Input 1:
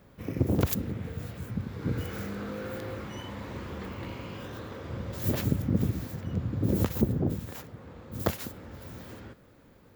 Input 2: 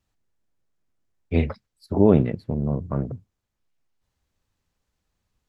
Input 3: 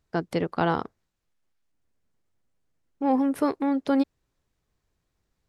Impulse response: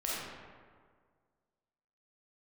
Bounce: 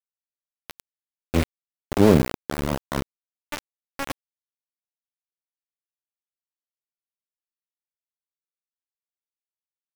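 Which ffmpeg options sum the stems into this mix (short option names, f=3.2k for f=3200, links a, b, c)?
-filter_complex "[0:a]equalizer=f=280:w=6:g=-12,alimiter=limit=-20.5dB:level=0:latency=1:release=156,volume=-6.5dB,asplit=2[a][b];[b]volume=-13.5dB[c];[1:a]highshelf=f=3.4k:g=-4,volume=-1.5dB,asplit=2[d][e];[2:a]adynamicequalizer=threshold=0.00501:dfrequency=3500:dqfactor=0.7:tfrequency=3500:tqfactor=0.7:attack=5:release=100:ratio=0.375:range=2.5:mode=cutabove:tftype=highshelf,adelay=100,volume=-6.5dB[f];[e]apad=whole_len=246474[g];[f][g]sidechaincompress=threshold=-31dB:ratio=8:attack=16:release=552[h];[c]aecho=0:1:67|134|201|268|335|402|469|536:1|0.54|0.292|0.157|0.085|0.0459|0.0248|0.0134[i];[a][d][h][i]amix=inputs=4:normalize=0,dynaudnorm=f=300:g=9:m=4.5dB,aeval=exprs='val(0)*gte(abs(val(0)),0.126)':c=same"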